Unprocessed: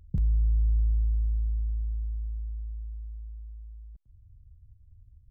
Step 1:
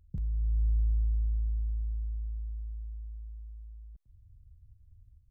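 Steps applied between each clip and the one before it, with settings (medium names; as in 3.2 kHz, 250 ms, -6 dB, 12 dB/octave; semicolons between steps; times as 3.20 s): level rider gain up to 6 dB; trim -8.5 dB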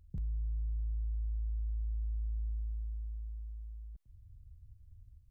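peak limiter -32.5 dBFS, peak gain reduction 10.5 dB; trim +1 dB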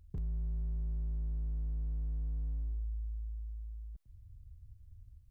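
hard clipper -34.5 dBFS, distortion -17 dB; trim +1.5 dB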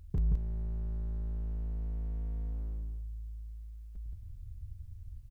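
delay 174 ms -4.5 dB; trim +7.5 dB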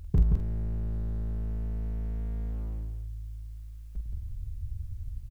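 doubling 46 ms -7 dB; trim +8 dB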